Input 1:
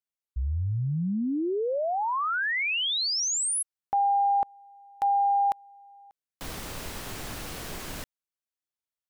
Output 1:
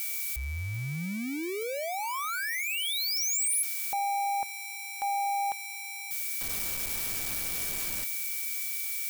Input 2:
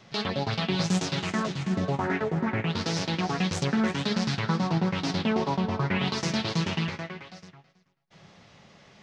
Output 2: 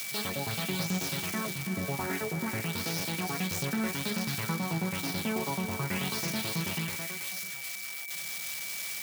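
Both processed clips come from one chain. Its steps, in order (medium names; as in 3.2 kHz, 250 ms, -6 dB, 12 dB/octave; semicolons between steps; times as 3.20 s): zero-crossing glitches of -20.5 dBFS; whistle 2.3 kHz -34 dBFS; trim -6.5 dB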